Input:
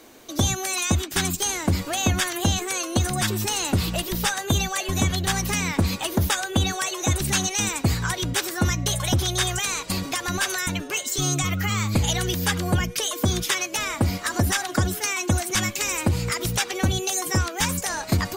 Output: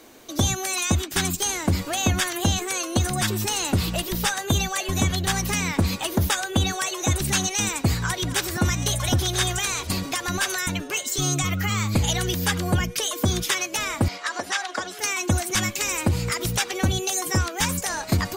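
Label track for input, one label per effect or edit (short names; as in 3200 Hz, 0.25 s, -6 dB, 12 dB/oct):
7.550000	9.940000	reverse delay 0.66 s, level -13 dB
14.080000	14.990000	BPF 550–5800 Hz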